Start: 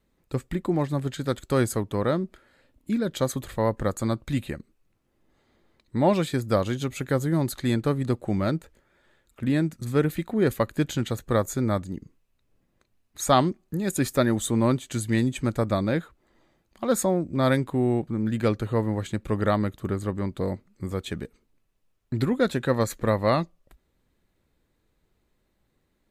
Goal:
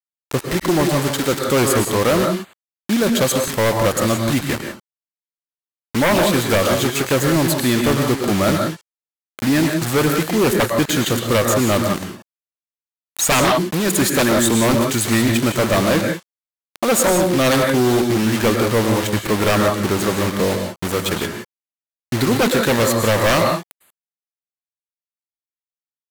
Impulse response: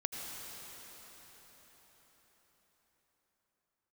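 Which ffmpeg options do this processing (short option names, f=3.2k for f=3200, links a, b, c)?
-filter_complex "[0:a]acrusher=bits=5:mix=0:aa=0.000001,lowshelf=f=230:g=-11[a];[1:a]atrim=start_sample=2205,atrim=end_sample=6615,asetrate=34398,aresample=44100[b];[a][b]afir=irnorm=-1:irlink=0,aeval=exprs='0.562*sin(PI/2*6.31*val(0)/0.562)':c=same,volume=-6dB"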